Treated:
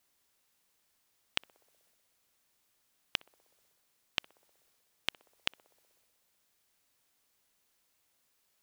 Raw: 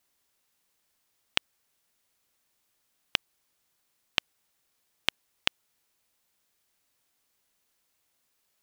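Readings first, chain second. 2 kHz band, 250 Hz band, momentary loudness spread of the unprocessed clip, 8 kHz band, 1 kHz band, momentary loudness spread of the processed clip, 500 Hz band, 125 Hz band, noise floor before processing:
-7.0 dB, -7.0 dB, 0 LU, -7.0 dB, -7.0 dB, 0 LU, -7.0 dB, -7.0 dB, -75 dBFS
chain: transient shaper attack -7 dB, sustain +3 dB; band-passed feedback delay 62 ms, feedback 79%, band-pass 530 Hz, level -19.5 dB

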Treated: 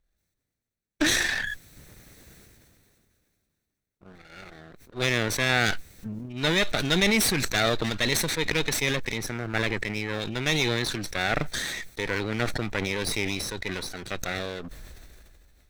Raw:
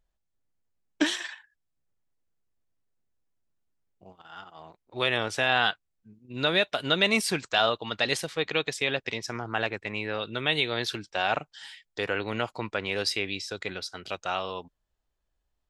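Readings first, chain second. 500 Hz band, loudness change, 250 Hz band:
0.0 dB, +1.5 dB, +4.5 dB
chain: comb filter that takes the minimum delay 0.49 ms; decay stretcher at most 23 dB/s

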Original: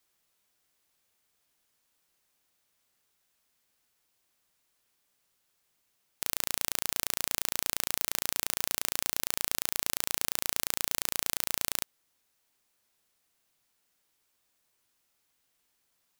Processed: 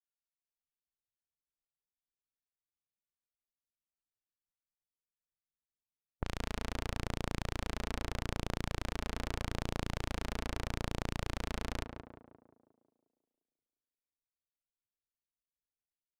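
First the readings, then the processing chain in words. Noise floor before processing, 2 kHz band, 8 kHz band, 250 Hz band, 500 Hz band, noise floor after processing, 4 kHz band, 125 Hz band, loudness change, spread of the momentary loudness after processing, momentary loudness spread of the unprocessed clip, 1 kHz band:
-76 dBFS, -5.0 dB, -19.0 dB, +7.5 dB, +2.5 dB, under -85 dBFS, -10.5 dB, +12.0 dB, -9.5 dB, 4 LU, 1 LU, -1.0 dB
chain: expander on every frequency bin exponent 2; RIAA curve playback; level-controlled noise filter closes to 650 Hz, open at -38.5 dBFS; treble shelf 7.9 kHz -11 dB; peak limiter -28.5 dBFS, peak gain reduction 10.5 dB; level rider gain up to 11 dB; on a send: tape echo 177 ms, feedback 61%, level -3 dB, low-pass 1.3 kHz; on the sum: trim -1 dB

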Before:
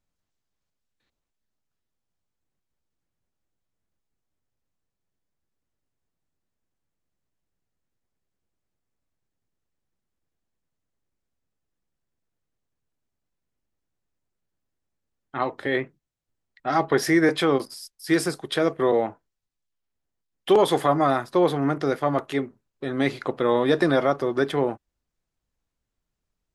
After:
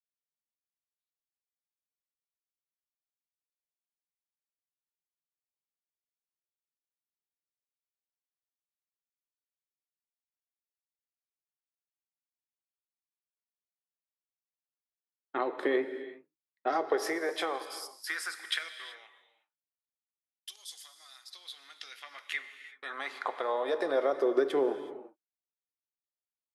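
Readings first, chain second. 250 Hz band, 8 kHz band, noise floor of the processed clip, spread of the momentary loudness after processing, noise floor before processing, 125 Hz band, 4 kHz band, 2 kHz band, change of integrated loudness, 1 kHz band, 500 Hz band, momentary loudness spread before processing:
-15.5 dB, -7.5 dB, under -85 dBFS, 19 LU, -83 dBFS, under -30 dB, -6.5 dB, -7.5 dB, -9.5 dB, -10.5 dB, -9.5 dB, 13 LU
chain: high-pass 140 Hz; gate -44 dBFS, range -27 dB; compression, threshold -26 dBFS, peak gain reduction 12 dB; LFO high-pass sine 0.11 Hz 340–5400 Hz; gated-style reverb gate 400 ms flat, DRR 10 dB; trim -3 dB

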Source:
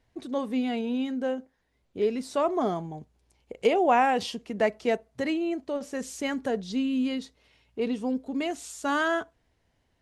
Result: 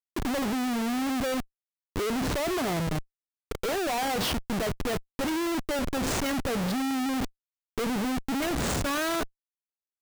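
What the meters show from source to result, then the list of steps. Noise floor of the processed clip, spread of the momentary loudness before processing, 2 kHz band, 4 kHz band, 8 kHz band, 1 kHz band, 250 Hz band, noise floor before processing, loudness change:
under -85 dBFS, 11 LU, 0.0 dB, +5.0 dB, +8.5 dB, -3.0 dB, 0.0 dB, -72 dBFS, -1.0 dB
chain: Schmitt trigger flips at -38 dBFS; trim +1 dB

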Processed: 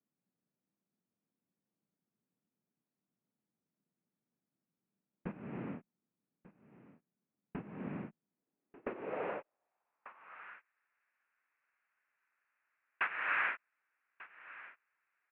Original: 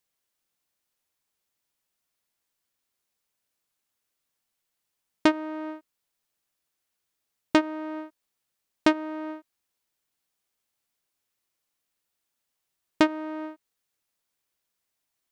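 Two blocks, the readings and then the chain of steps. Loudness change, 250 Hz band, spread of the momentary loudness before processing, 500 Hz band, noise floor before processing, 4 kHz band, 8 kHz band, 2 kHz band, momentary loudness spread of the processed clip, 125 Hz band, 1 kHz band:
-12.5 dB, -19.0 dB, 15 LU, -13.5 dB, -82 dBFS, -19.0 dB, under -25 dB, -3.0 dB, 22 LU, +2.0 dB, -10.0 dB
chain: compression 12:1, threshold -31 dBFS, peak gain reduction 16.5 dB; noise-vocoded speech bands 1; valve stage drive 31 dB, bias 0.7; on a send: delay 1192 ms -18.5 dB; on the sum: band-pass sweep 200 Hz -> 1.6 kHz, 8.20–10.60 s; Chebyshev low-pass 2.6 kHz, order 5; trim +16.5 dB

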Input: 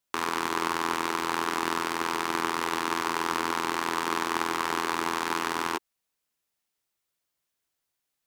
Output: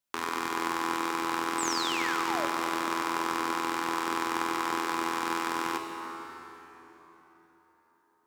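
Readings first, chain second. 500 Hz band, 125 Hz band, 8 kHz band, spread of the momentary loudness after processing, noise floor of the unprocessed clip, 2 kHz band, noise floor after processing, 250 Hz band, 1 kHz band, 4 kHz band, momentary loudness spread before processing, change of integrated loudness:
-2.0 dB, -5.0 dB, -0.5 dB, 11 LU, -83 dBFS, -2.0 dB, -69 dBFS, 0.0 dB, -1.5 dB, -1.5 dB, 1 LU, -1.5 dB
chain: painted sound fall, 1.58–2.46 s, 530–8500 Hz -31 dBFS; plate-style reverb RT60 4.4 s, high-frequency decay 0.65×, DRR 3.5 dB; trim -4 dB

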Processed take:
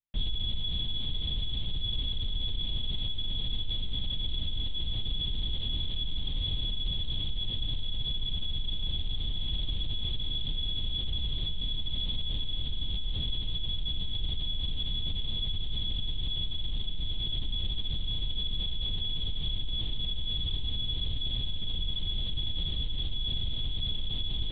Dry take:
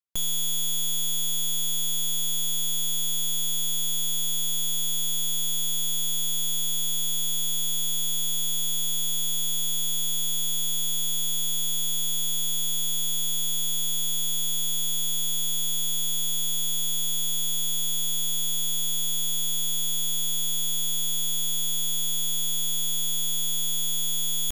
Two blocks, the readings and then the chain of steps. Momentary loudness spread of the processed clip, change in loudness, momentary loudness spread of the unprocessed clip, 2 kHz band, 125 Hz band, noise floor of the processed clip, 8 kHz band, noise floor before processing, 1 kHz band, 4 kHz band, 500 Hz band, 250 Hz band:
2 LU, -8.5 dB, 0 LU, -7.5 dB, +6.5 dB, -32 dBFS, under -40 dB, -24 dBFS, -7.5 dB, -4.0 dB, -3.5 dB, +0.5 dB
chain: reverb removal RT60 0.75 s; LPC vocoder at 8 kHz whisper; peaking EQ 1.4 kHz -11.5 dB 1.5 oct

